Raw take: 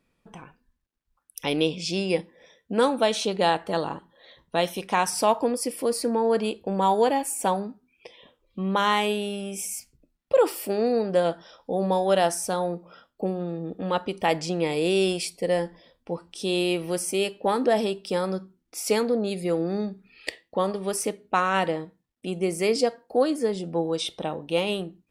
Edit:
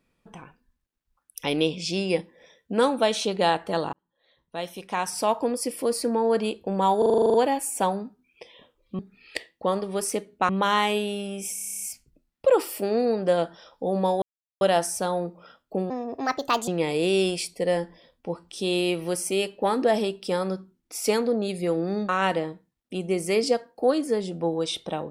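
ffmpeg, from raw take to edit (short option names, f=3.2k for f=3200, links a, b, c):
-filter_complex "[0:a]asplit=26[a][b][c][d][e][f][g][h][i][j][k][l][m][n][o][p][q][r][s][t][u][v][w][x][y][z];[a]atrim=end=3.93,asetpts=PTS-STARTPTS,afade=t=out:st=3.926:d=0.004:c=hsin[aa];[b]atrim=start=3.93:end=7.022,asetpts=PTS-STARTPTS,afade=t=in:d=1.77[ab];[c]atrim=start=6.978:end=7.022[ac];[d]atrim=start=6.978:end=7.022[ad];[e]atrim=start=6.978:end=7.022[ae];[f]atrim=start=6.978:end=7.022[af];[g]atrim=start=6.978:end=7.022[ag];[h]atrim=start=6.978:end=7.022[ah];[i]atrim=start=6.978:end=7.022[ai];[j]atrim=start=6.978:end=7.022[aj];[k]atrim=start=6.978:end=8.632[ak];[l]atrim=start=19.908:end=21.412[al];[m]atrim=start=8.628:end=9.712[am];[n]atrim=start=9.678:end=9.712[an];[o]atrim=start=9.678:end=9.712[ao];[p]atrim=start=9.678:end=9.712[ap];[q]atrim=start=9.678:end=9.712[aq];[r]atrim=start=9.678:end=9.712[ar];[s]atrim=start=9.678:end=9.712[as];[t]atrim=start=9.678:end=9.712[at];[u]atrim=start=9.678:end=9.712[au];[v]atrim=start=9.678:end=12.09,asetpts=PTS-STARTPTS,afade=t=out:st=2.408:d=0.004:c=hsin,apad=pad_dur=0.39[av];[w]atrim=start=12.09:end=13.384,asetpts=PTS-STARTPTS,afade=t=in:d=0.004:c=hsin[aw];[x]atrim=start=13.38:end=14.5,asetpts=PTS-STARTPTS,asetrate=63504,aresample=44100[ax];[y]atrim=start=14.496:end=19.912[ay];[z]atrim=start=21.408[az];[aa][ab]concat=n=2:v=0:a=1[ba];[ba][ac]acrossfade=d=0.004:c1=hsin:c2=hsin[bb];[bb][ad]acrossfade=d=0.004:c1=hsin:c2=hsin[bc];[bc][ae]acrossfade=d=0.004:c1=hsin:c2=hsin[bd];[bd][af]acrossfade=d=0.004:c1=hsin:c2=hsin[be];[be][ag]acrossfade=d=0.004:c1=hsin:c2=hsin[bf];[bf][ah]acrossfade=d=0.004:c1=hsin:c2=hsin[bg];[bg][ai]acrossfade=d=0.004:c1=hsin:c2=hsin[bh];[bh][aj]acrossfade=d=0.004:c1=hsin:c2=hsin[bi];[bi][ak]acrossfade=d=0.004:c1=hsin:c2=hsin[bj];[bj][al]acrossfade=d=0.004:c1=hsin:c2=hsin[bk];[bk][am]acrossfade=d=0.004:c1=hsin:c2=hsin[bl];[bl][an]acrossfade=d=0.004:c1=hsin:c2=hsin[bm];[bm][ao]acrossfade=d=0.004:c1=hsin:c2=hsin[bn];[bn][ap]acrossfade=d=0.004:c1=hsin:c2=hsin[bo];[bo][aq]acrossfade=d=0.004:c1=hsin:c2=hsin[bp];[bp][ar]acrossfade=d=0.004:c1=hsin:c2=hsin[bq];[bq][as]acrossfade=d=0.004:c1=hsin:c2=hsin[br];[br][at]acrossfade=d=0.004:c1=hsin:c2=hsin[bs];[bs][au]acrossfade=d=0.004:c1=hsin:c2=hsin[bt];[av][aw]concat=n=2:v=0:a=1[bu];[bt][bu]acrossfade=d=0.004:c1=hsin:c2=hsin[bv];[bv][ax]acrossfade=d=0.004:c1=hsin:c2=hsin[bw];[bw][ay]acrossfade=d=0.004:c1=hsin:c2=hsin[bx];[bx][az]acrossfade=d=0.004:c1=hsin:c2=hsin"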